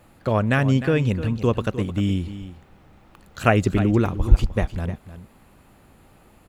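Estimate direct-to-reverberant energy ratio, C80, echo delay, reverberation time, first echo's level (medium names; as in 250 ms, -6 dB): no reverb, no reverb, 305 ms, no reverb, -13.0 dB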